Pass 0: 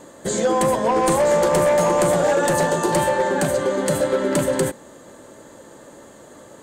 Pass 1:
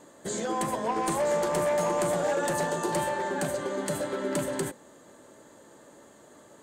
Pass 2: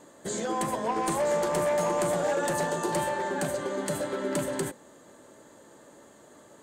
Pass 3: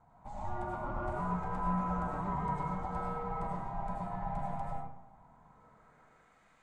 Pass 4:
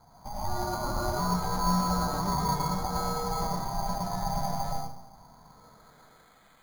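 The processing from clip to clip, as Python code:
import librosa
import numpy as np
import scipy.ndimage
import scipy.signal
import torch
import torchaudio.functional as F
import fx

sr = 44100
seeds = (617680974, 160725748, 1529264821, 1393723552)

y1 = fx.low_shelf(x, sr, hz=89.0, db=-7.5)
y1 = fx.notch(y1, sr, hz=520.0, q=17.0)
y1 = y1 * 10.0 ** (-8.5 / 20.0)
y2 = y1
y3 = fx.filter_sweep_bandpass(y2, sr, from_hz=430.0, to_hz=2000.0, start_s=5.11, end_s=6.5, q=1.2)
y3 = y3 * np.sin(2.0 * np.pi * 410.0 * np.arange(len(y3)) / sr)
y3 = fx.rev_freeverb(y3, sr, rt60_s=0.79, hf_ratio=0.55, predelay_ms=60, drr_db=-2.5)
y3 = y3 * 10.0 ** (-5.5 / 20.0)
y4 = np.repeat(scipy.signal.resample_poly(y3, 1, 8), 8)[:len(y3)]
y4 = y4 * 10.0 ** (6.5 / 20.0)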